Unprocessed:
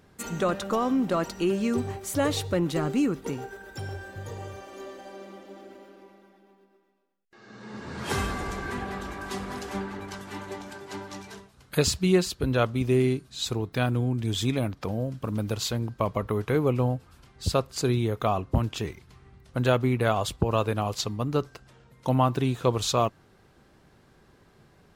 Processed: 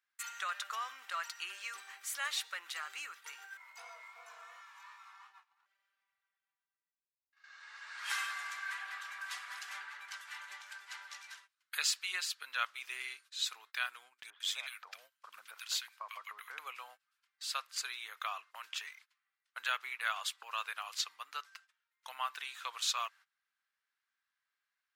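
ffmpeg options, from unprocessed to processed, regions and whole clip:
-filter_complex "[0:a]asettb=1/sr,asplit=3[a][b][c];[a]atrim=end=3.574[d];[b]atrim=start=3.57:end=5.66,asetpts=PTS-STARTPTS,afade=t=in:d=0.004:c=qsin,afade=t=out:st=2.086:d=0.004:c=qsin,lowshelf=f=470:g=9.5,aeval=exprs='val(0)*sin(2*PI*580*n/s)':c=same,flanger=delay=17.5:depth=6.8:speed=2.8[e];[c]atrim=start=5.656[f];[d][e]acrossfade=d=0.004:c1=hsin:c2=qsin[g];[g][f]acrossfade=d=0.004:c1=qsin:c2=hsin,asettb=1/sr,asplit=3[h][i][j];[h]atrim=end=14.304[k];[i]atrim=start=14.3:end=16.59,asetpts=PTS-STARTPTS,afade=t=in:d=0.004:c=qsin,afade=t=out:st=2.286:d=0.004:c=qsin,asubboost=boost=7:cutoff=180,acrossover=split=1400[l][m];[m]adelay=100[n];[l][n]amix=inputs=2:normalize=0,atrim=end_sample=100989[o];[j]atrim=start=16.586[p];[k][o]acrossfade=d=0.004:c1=hsin:c2=qsin[q];[q][p]acrossfade=d=0.004:c1=qsin:c2=hsin,highpass=f=1.5k:w=0.5412,highpass=f=1.5k:w=1.3066,agate=range=-19dB:threshold=-57dB:ratio=16:detection=peak,highshelf=f=2.1k:g=-9.5,volume=3.5dB"

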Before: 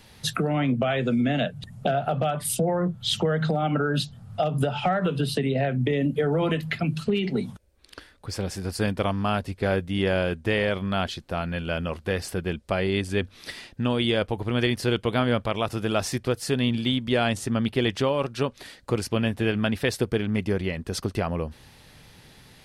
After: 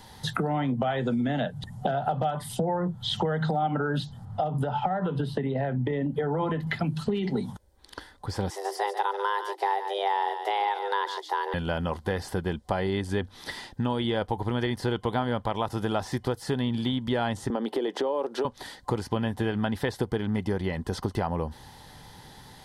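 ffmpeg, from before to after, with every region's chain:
-filter_complex "[0:a]asettb=1/sr,asplit=3[a][b][c];[a]atrim=end=4.254[d];[b]atrim=start=4.25:end=6.67,asetpts=PTS-STARTPTS,afade=t=in:d=0.004:c=qsin,afade=t=out:st=2.416:d=0.004:c=qsin,highshelf=f=3.3k:g=-10.5,acrossover=split=910|2600[e][f][g];[e]acompressor=threshold=-23dB:ratio=4[h];[f]acompressor=threshold=-35dB:ratio=4[i];[g]acompressor=threshold=-49dB:ratio=4[j];[h][i][j]amix=inputs=3:normalize=0[k];[c]atrim=start=6.666[l];[d][k]acrossfade=d=0.004:c1=hsin:c2=qsin[m];[m][l]acrossfade=d=0.004:c1=qsin:c2=hsin,asettb=1/sr,asplit=3[n][o][p];[n]atrim=end=8.504[q];[o]atrim=start=8.5:end=11.54,asetpts=PTS-STARTPTS,afade=t=in:d=0.004:c=qsin,afade=t=out:st=3.036:d=0.004:c=qsin,equalizer=f=210:w=0.41:g=-7,aecho=1:1:142:0.266,atrim=end_sample=134064,afreqshift=300[r];[p]atrim=start=11.536[s];[q][r]acrossfade=d=0.004:c1=hsin:c2=qsin[t];[t][s]acrossfade=d=0.004:c1=qsin:c2=hsin,asettb=1/sr,asplit=3[u][v][w];[u]atrim=end=17.504[x];[v]atrim=start=17.5:end=18.45,asetpts=PTS-STARTPTS,afade=t=in:d=0.004:c=qsin,afade=t=out:st=0.946:d=0.004:c=qsin,highpass=f=250:w=0.5412,highpass=f=250:w=1.3066,equalizer=f=440:t=o:w=1.6:g=13,acompressor=threshold=-27dB:ratio=3:attack=3.2:release=140:knee=1:detection=peak[y];[w]atrim=start=18.446[z];[x][y]acrossfade=d=0.004:c1=hsin:c2=qsin[aa];[aa][z]acrossfade=d=0.004:c1=qsin:c2=hsin,acrossover=split=3400[ab][ac];[ac]acompressor=threshold=-42dB:ratio=4:attack=1:release=60[ad];[ab][ad]amix=inputs=2:normalize=0,superequalizer=9b=2.51:12b=0.398,acompressor=threshold=-27dB:ratio=3,volume=2dB"

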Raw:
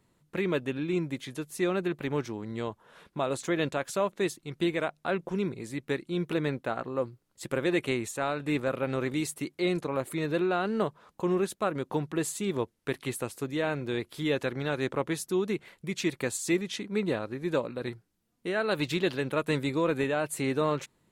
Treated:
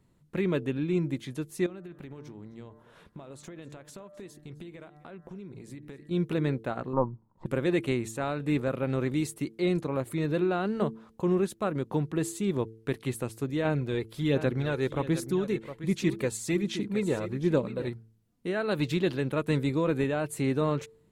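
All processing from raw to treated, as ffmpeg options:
-filter_complex "[0:a]asettb=1/sr,asplit=3[a][b][c];[a]atrim=end=1.664[d];[b]atrim=start=1.66:end=6.11,asetpts=PTS-STARTPTS,afade=t=in:d=0.004:c=qsin,afade=t=out:st=4.446:d=0.004:c=qsin,bandreject=f=148.8:t=h:w=4,bandreject=f=297.6:t=h:w=4,bandreject=f=446.4:t=h:w=4,bandreject=f=595.2:t=h:w=4,bandreject=f=744:t=h:w=4,bandreject=f=892.8:t=h:w=4,bandreject=f=1.0416k:t=h:w=4,bandreject=f=1.1904k:t=h:w=4,bandreject=f=1.3392k:t=h:w=4,bandreject=f=1.488k:t=h:w=4,bandreject=f=1.6368k:t=h:w=4,bandreject=f=1.7856k:t=h:w=4,bandreject=f=1.9344k:t=h:w=4,acompressor=threshold=-42dB:ratio=8:attack=3.2:release=140:knee=1:detection=peak,aecho=1:1:261:0.106,atrim=end_sample=196245[e];[c]atrim=start=6.106[f];[d][e]acrossfade=d=0.004:c1=hsin:c2=qsin[g];[g][f]acrossfade=d=0.004:c1=qsin:c2=hsin,asettb=1/sr,asplit=3[h][i][j];[h]atrim=end=6.934[k];[i]atrim=start=6.93:end=7.46,asetpts=PTS-STARTPTS,afade=t=in:d=0.004:c=qsin,afade=t=out:st=0.526:d=0.004:c=qsin,aeval=exprs='if(lt(val(0),0),0.708*val(0),val(0))':c=same,lowpass=f=950:t=q:w=9.5,equalizer=f=180:w=1.2:g=7[l];[j]atrim=start=7.456[m];[k][l]acrossfade=d=0.004:c1=hsin:c2=qsin[n];[n][m]acrossfade=d=0.004:c1=qsin:c2=hsin,asettb=1/sr,asplit=3[o][p][q];[o]atrim=end=13.654[r];[p]atrim=start=13.65:end=17.88,asetpts=PTS-STARTPTS,afade=t=in:d=0.004:c=qsin,afade=t=out:st=4.226:d=0.004:c=qsin,aecho=1:1:711:0.237,atrim=end_sample=186543,aphaser=in_gain=1:out_gain=1:delay=2.3:decay=0.37:speed=1.3:type=sinusoidal[s];[q]atrim=start=17.876[t];[r][s]acrossfade=d=0.004:c1=hsin:c2=qsin[u];[u][t]acrossfade=d=0.004:c1=qsin:c2=hsin,lowshelf=f=320:g=10,bandreject=f=111.6:t=h:w=4,bandreject=f=223.2:t=h:w=4,bandreject=f=334.8:t=h:w=4,bandreject=f=446.4:t=h:w=4,volume=-3.5dB"

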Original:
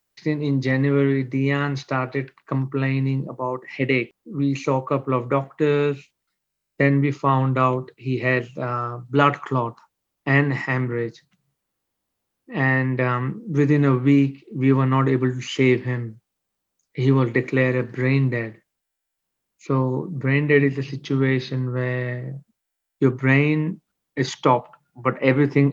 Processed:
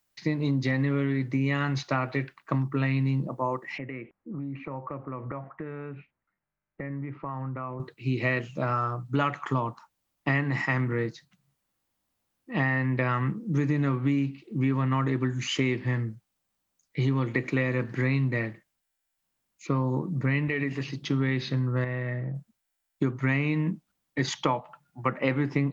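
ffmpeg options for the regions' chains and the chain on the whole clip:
-filter_complex "[0:a]asettb=1/sr,asplit=3[a][b][c];[a]atrim=end=3.784[d];[b]atrim=start=3.78:end=7.8,asetpts=PTS-STARTPTS,afade=t=in:d=0.004:c=qsin,afade=t=out:st=4.016:d=0.004:c=qsin,acompressor=threshold=-31dB:ratio=6:attack=3.2:release=140:knee=1:detection=peak,lowpass=f=2k:w=0.5412,lowpass=f=2k:w=1.3066[e];[c]atrim=start=7.796[f];[d][e]acrossfade=d=0.004:c1=hsin:c2=qsin[g];[g][f]acrossfade=d=0.004:c1=qsin:c2=hsin,asettb=1/sr,asplit=3[h][i][j];[h]atrim=end=20.484[k];[i]atrim=start=20.48:end=21.03,asetpts=PTS-STARTPTS,afade=t=in:d=0.004:c=qsin,afade=t=out:st=0.546:d=0.004:c=qsin,lowshelf=f=150:g=-10.5,bandreject=f=4.9k:w=28,acompressor=threshold=-21dB:ratio=4:attack=3.2:release=140:knee=1:detection=peak[l];[j]atrim=start=21.026[m];[k][l]acrossfade=d=0.004:c1=hsin:c2=qsin[n];[n][m]acrossfade=d=0.004:c1=qsin:c2=hsin,asettb=1/sr,asplit=3[o][p][q];[o]atrim=end=21.844[r];[p]atrim=start=21.84:end=22.35,asetpts=PTS-STARTPTS,afade=t=in:d=0.004:c=qsin,afade=t=out:st=0.506:d=0.004:c=qsin,lowpass=2.5k,acompressor=threshold=-28dB:ratio=2.5:attack=3.2:release=140:knee=1:detection=peak[s];[q]atrim=start=22.346[t];[r][s]acrossfade=d=0.004:c1=hsin:c2=qsin[u];[u][t]acrossfade=d=0.004:c1=qsin:c2=hsin,equalizer=f=420:w=2.9:g=-6.5,acompressor=threshold=-22dB:ratio=6"

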